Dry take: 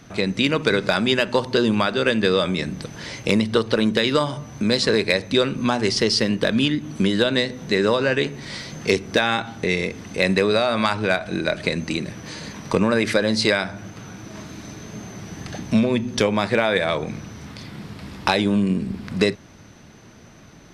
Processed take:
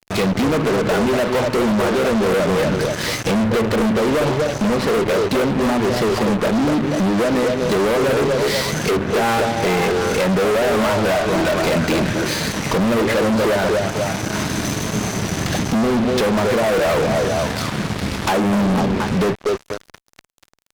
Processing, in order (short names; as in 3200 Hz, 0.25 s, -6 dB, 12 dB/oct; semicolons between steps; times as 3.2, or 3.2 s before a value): CVSD 64 kbps; treble ducked by the level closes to 790 Hz, closed at -15.5 dBFS; vocal rider within 4 dB 2 s; delay with a stepping band-pass 0.243 s, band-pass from 490 Hz, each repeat 0.7 oct, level -4 dB; fuzz box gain 32 dB, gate -37 dBFS; gain -2 dB